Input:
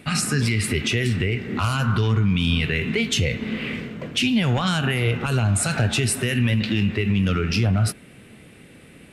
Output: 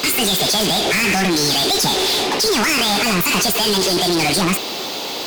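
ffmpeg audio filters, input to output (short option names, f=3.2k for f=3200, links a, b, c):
-filter_complex "[0:a]asplit=2[a][b];[b]highpass=f=720:p=1,volume=34dB,asoftclip=type=tanh:threshold=-11dB[c];[a][c]amix=inputs=2:normalize=0,lowpass=f=7.8k:p=1,volume=-6dB,asetrate=76440,aresample=44100"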